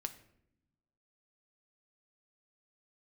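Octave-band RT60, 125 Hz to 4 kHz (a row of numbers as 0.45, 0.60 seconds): 1.4, 1.4, 0.95, 0.65, 0.60, 0.50 seconds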